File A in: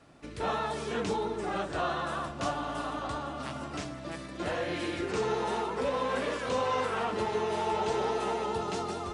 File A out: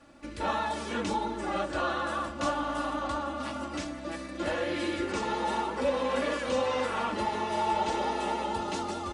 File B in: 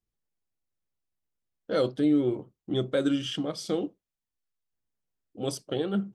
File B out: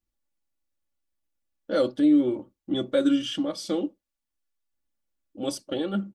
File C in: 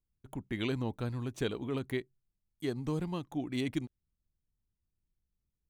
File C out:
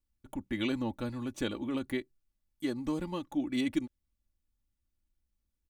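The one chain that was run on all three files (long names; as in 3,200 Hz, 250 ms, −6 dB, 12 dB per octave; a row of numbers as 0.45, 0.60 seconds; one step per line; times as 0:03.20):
comb filter 3.5 ms, depth 69%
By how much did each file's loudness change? +1.5, +3.0, +1.5 LU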